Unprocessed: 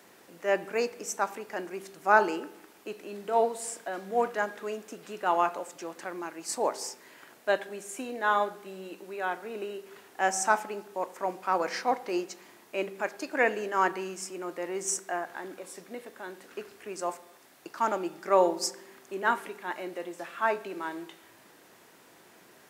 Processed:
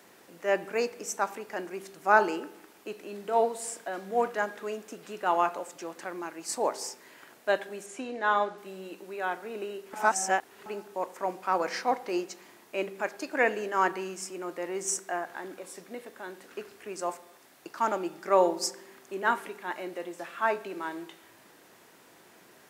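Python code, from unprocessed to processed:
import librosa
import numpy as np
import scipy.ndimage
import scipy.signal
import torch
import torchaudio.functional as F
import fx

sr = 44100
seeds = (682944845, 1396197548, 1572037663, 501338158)

y = fx.lowpass(x, sr, hz=6300.0, slope=12, at=(7.86, 8.58))
y = fx.edit(y, sr, fx.reverse_span(start_s=9.93, length_s=0.73), tone=tone)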